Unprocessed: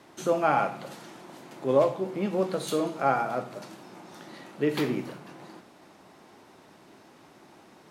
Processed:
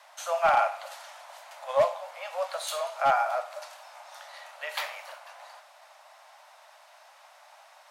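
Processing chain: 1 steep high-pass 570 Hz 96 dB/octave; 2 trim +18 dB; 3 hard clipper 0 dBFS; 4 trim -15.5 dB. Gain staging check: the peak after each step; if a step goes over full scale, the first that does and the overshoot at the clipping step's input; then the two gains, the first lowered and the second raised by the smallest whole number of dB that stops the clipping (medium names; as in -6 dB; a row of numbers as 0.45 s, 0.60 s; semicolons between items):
-13.0 dBFS, +5.0 dBFS, 0.0 dBFS, -15.5 dBFS; step 2, 5.0 dB; step 2 +13 dB, step 4 -10.5 dB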